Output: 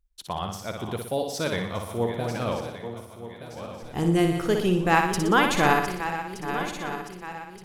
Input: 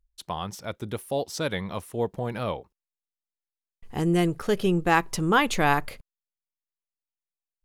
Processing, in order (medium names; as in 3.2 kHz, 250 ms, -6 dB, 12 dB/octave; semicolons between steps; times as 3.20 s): backward echo that repeats 611 ms, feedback 65%, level -10 dB; flutter echo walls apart 10.3 m, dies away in 0.64 s